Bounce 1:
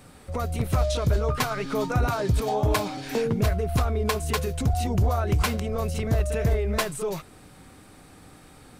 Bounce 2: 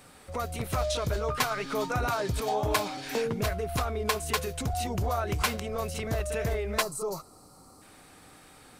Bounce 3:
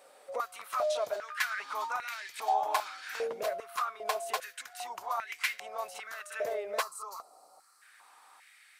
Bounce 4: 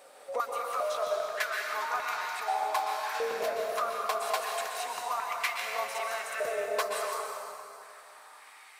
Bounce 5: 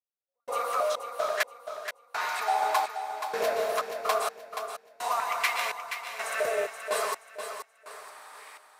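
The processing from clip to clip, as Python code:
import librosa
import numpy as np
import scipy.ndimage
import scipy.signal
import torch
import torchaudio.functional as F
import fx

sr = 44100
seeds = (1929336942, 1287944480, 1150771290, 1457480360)

y1 = fx.spec_box(x, sr, start_s=6.82, length_s=1.0, low_hz=1400.0, high_hz=3900.0, gain_db=-18)
y1 = fx.low_shelf(y1, sr, hz=360.0, db=-9.5)
y2 = fx.filter_held_highpass(y1, sr, hz=2.5, low_hz=560.0, high_hz=2000.0)
y2 = y2 * librosa.db_to_amplitude(-7.5)
y3 = fx.rider(y2, sr, range_db=4, speed_s=0.5)
y3 = fx.rev_plate(y3, sr, seeds[0], rt60_s=2.6, hf_ratio=0.8, predelay_ms=110, drr_db=0.0)
y4 = fx.step_gate(y3, sr, bpm=63, pattern='..xx.x...xxx', floor_db=-60.0, edge_ms=4.5)
y4 = fx.echo_feedback(y4, sr, ms=477, feedback_pct=30, wet_db=-8.5)
y4 = y4 * librosa.db_to_amplitude(4.0)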